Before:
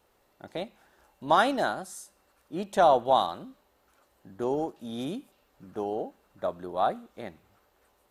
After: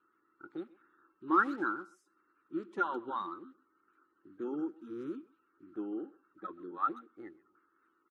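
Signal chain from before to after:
spectral magnitudes quantised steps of 30 dB
pair of resonant band-passes 660 Hz, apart 2 octaves
far-end echo of a speakerphone 130 ms, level −20 dB
level +3.5 dB

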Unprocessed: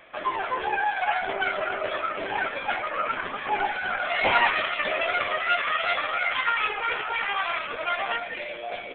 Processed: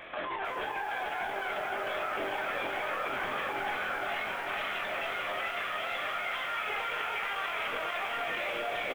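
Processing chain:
compressor whose output falls as the input rises −33 dBFS, ratio −1
ambience of single reflections 23 ms −9.5 dB, 44 ms −11 dB
brickwall limiter −27 dBFS, peak gain reduction 11 dB
feedback echo at a low word length 445 ms, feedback 80%, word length 9 bits, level −5 dB

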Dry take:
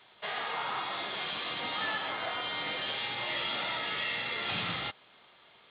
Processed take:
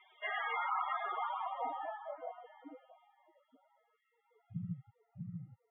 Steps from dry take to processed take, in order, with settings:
echo with a time of its own for lows and highs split 2,900 Hz, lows 645 ms, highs 87 ms, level −4.5 dB
spectral peaks only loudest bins 16
low-pass filter sweep 2,300 Hz → 160 Hz, 0:00.42–0:03.48
level −1.5 dB

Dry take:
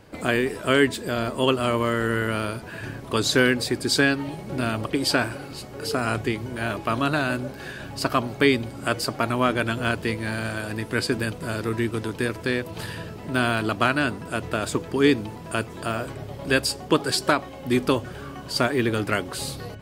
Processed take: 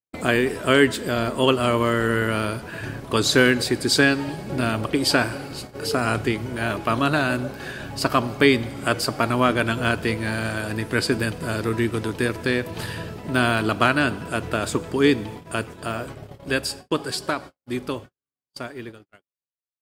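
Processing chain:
fade-out on the ending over 5.73 s
four-comb reverb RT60 1.8 s, combs from 33 ms, DRR 19 dB
noise gate −38 dBFS, range −56 dB
level +2.5 dB

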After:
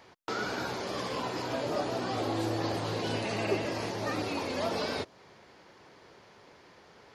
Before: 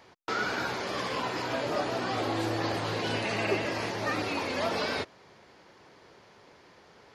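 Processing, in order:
dynamic equaliser 1,900 Hz, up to −6 dB, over −45 dBFS, Q 0.72

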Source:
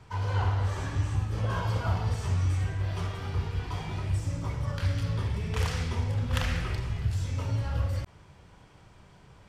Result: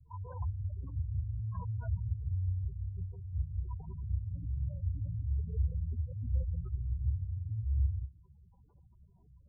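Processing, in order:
low-pass filter 1,300 Hz 12 dB per octave
mains-hum notches 50/100/150/200/250/300/350 Hz
gate on every frequency bin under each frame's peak −10 dB strong
parametric band 66 Hz +11 dB 0.44 octaves
level −8 dB

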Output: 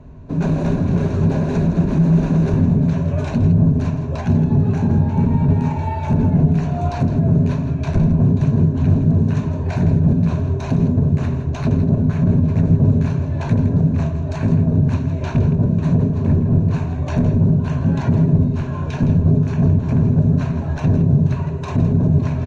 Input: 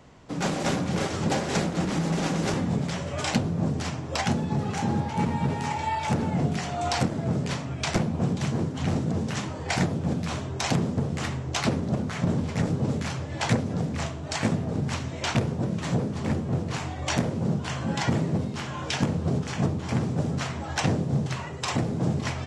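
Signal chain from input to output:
EQ curve with evenly spaced ripples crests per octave 1.5, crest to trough 9 dB
brickwall limiter −18 dBFS, peak gain reduction 8 dB
spectral tilt −4.5 dB per octave
single-tap delay 163 ms −11 dB

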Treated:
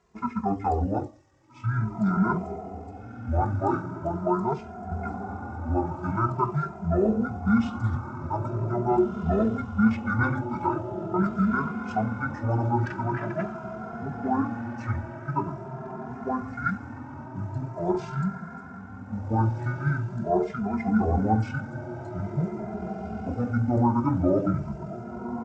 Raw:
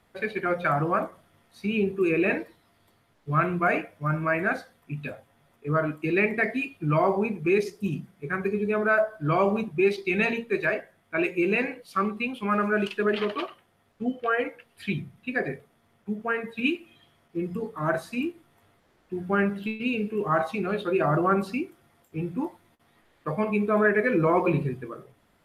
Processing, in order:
high-pass filter 42 Hz 12 dB per octave
feedback delay with all-pass diffusion 1,719 ms, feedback 50%, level −8.5 dB
pitch shifter −10 semitones
barber-pole flanger 2.5 ms +0.44 Hz
level +2.5 dB

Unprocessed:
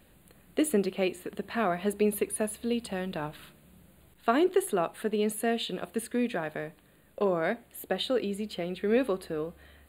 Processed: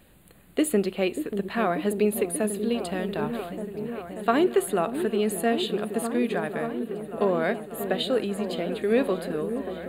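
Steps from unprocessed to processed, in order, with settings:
echo whose low-pass opens from repeat to repeat 587 ms, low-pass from 400 Hz, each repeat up 1 octave, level −6 dB
level +3 dB

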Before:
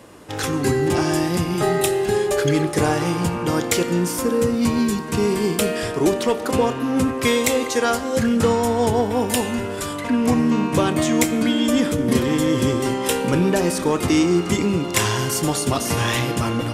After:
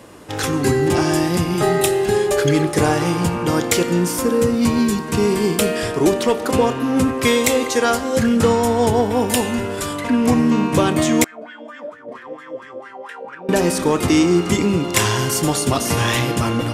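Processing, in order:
0:11.24–0:13.49: LFO wah 4.4 Hz 540–1,800 Hz, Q 7.6
level +2.5 dB

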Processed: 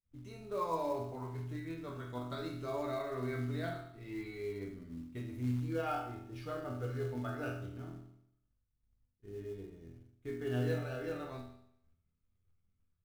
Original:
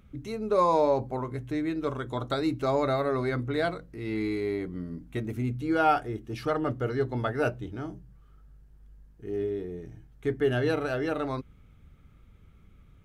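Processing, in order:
downward expander −42 dBFS
low-shelf EQ 88 Hz +9.5 dB
notch filter 800 Hz, Q 16
resonators tuned to a chord E2 minor, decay 0.72 s
in parallel at −3 dB: floating-point word with a short mantissa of 2 bits

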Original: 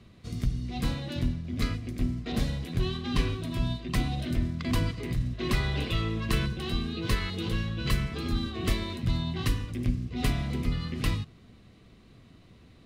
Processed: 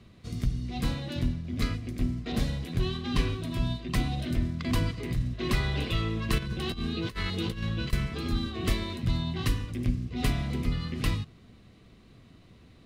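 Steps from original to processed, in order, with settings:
0:06.38–0:07.93: compressor whose output falls as the input rises −31 dBFS, ratio −0.5

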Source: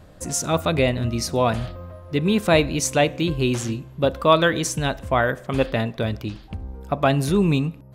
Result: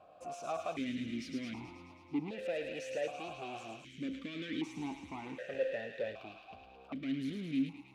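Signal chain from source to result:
brickwall limiter −14 dBFS, peak gain reduction 11 dB
soft clipping −27 dBFS, distortion −8 dB
delay with a high-pass on its return 108 ms, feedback 75%, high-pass 1,700 Hz, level −4.5 dB
formant filter that steps through the vowels 1.3 Hz
level +3 dB

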